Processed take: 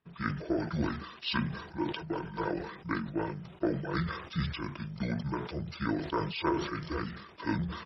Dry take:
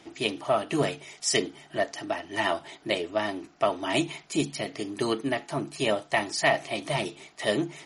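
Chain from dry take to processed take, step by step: gate with hold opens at -42 dBFS; pitch shift -11.5 st; decay stretcher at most 67 dB/s; trim -6.5 dB

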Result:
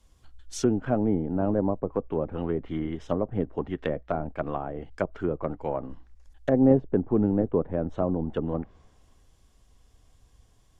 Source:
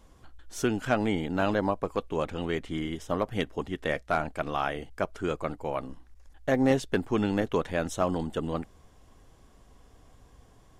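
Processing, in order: low-pass that closes with the level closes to 550 Hz, closed at -25.5 dBFS; three bands expanded up and down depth 40%; trim +3.5 dB

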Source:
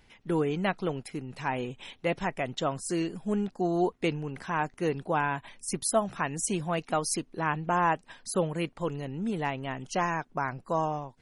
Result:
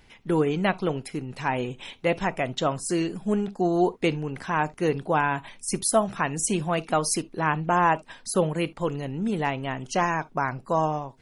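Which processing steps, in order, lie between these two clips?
on a send: Butterworth band-stop 1.8 kHz, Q 2.5 + reverberation, pre-delay 9 ms, DRR 18 dB; on the sum: trim +4.5 dB

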